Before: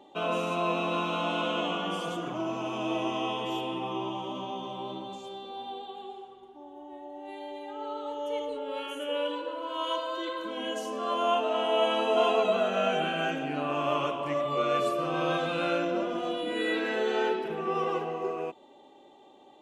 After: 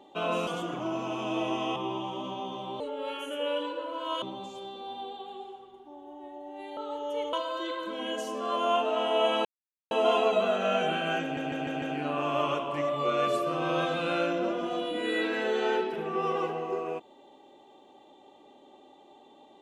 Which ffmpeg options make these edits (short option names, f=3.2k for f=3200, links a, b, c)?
-filter_complex "[0:a]asplit=12[a][b][c][d][e][f][g][h][i][j][k][l];[a]atrim=end=0.472[m];[b]atrim=start=2.008:end=3.302[n];[c]atrim=start=3.868:end=4.912[o];[d]atrim=start=8.488:end=9.912[p];[e]atrim=start=4.908:end=7.462[q];[f]atrim=start=7.928:end=8.492[r];[g]atrim=start=9.908:end=12.03,asetpts=PTS-STARTPTS,afade=t=out:st=2.118:d=0.004:c=hsin,apad=pad_dur=0.46[s];[h]atrim=start=12.03:end=13.492,asetpts=PTS-STARTPTS,afade=t=in:d=0.004:c=hsin[t];[i]atrim=start=13.338:end=13.492[u];[j]atrim=start=13.338:end=13.492[v];[k]atrim=start=13.338:end=13.492[w];[l]atrim=start=13.338[x];[m][n]acrossfade=d=0.004:c1=hsin:c2=hsin[y];[y][o]acrossfade=d=0.004:c1=hsin:c2=hsin[z];[z][p]acrossfade=d=0.004:c1=hsin:c2=hsin[aa];[aa][q]acrossfade=d=0.004:c1=hsin:c2=hsin[ab];[ab][r]acrossfade=d=0.004:c1=hsin:c2=hsin[ac];[s][t]concat=n=2:v=0:a=1[ad];[ac][ad]acrossfade=d=0.004:c1=hsin:c2=hsin[ae];[ae][u]acrossfade=d=0.004:c1=hsin:c2=hsin[af];[af][v]acrossfade=d=0.004:c1=hsin:c2=hsin[ag];[ag][w]acrossfade=d=0.004:c1=hsin:c2=hsin[ah];[ah][x]acrossfade=d=0.004:c1=hsin:c2=hsin"